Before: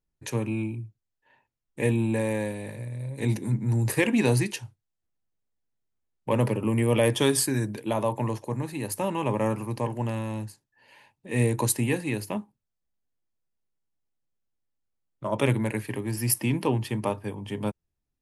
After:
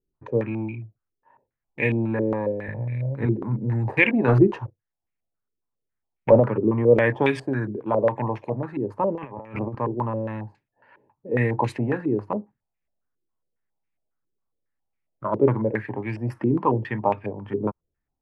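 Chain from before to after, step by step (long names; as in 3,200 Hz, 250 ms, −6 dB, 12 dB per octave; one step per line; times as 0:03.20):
0:02.68–0:03.26: low-shelf EQ 150 Hz +12 dB
0:04.28–0:06.40: leveller curve on the samples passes 2
0:09.15–0:09.75: compressor whose output falls as the input rises −33 dBFS, ratio −0.5
low-pass on a step sequencer 7.3 Hz 390–2,300 Hz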